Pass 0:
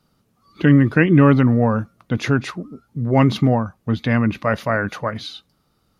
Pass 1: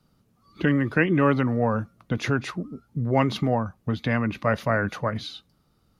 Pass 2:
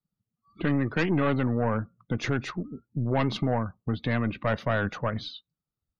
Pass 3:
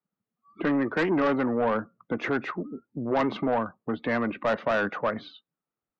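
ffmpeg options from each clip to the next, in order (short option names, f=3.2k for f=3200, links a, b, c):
-filter_complex "[0:a]lowshelf=f=290:g=5.5,acrossover=split=390|2800[a][b][c];[a]acompressor=threshold=-20dB:ratio=6[d];[d][b][c]amix=inputs=3:normalize=0,volume=-4dB"
-af "aeval=exprs='(tanh(8.91*val(0)+0.45)-tanh(0.45))/8.91':c=same,afftdn=nr=26:nf=-47"
-filter_complex "[0:a]acrossover=split=230 2400:gain=0.0708 1 0.0794[a][b][c];[a][b][c]amix=inputs=3:normalize=0,aeval=exprs='0.178*(cos(1*acos(clip(val(0)/0.178,-1,1)))-cos(1*PI/2))+0.0282*(cos(5*acos(clip(val(0)/0.178,-1,1)))-cos(5*PI/2))':c=same,volume=1dB"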